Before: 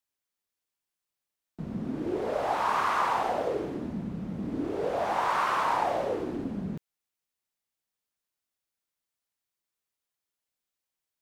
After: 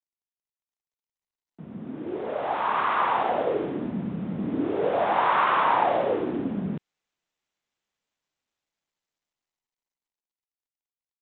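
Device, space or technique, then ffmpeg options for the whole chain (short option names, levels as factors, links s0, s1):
Bluetooth headset: -af "highpass=120,dynaudnorm=f=250:g=21:m=5.31,aresample=8000,aresample=44100,volume=0.447" -ar 16000 -c:a sbc -b:a 64k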